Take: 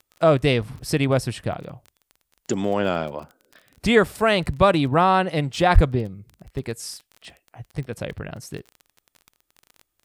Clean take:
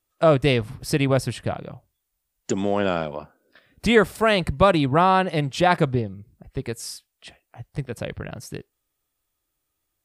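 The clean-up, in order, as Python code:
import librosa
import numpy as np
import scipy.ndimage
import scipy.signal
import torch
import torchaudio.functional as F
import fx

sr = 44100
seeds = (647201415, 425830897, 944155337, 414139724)

y = fx.fix_declick_ar(x, sr, threshold=6.5)
y = fx.fix_deplosive(y, sr, at_s=(5.74,))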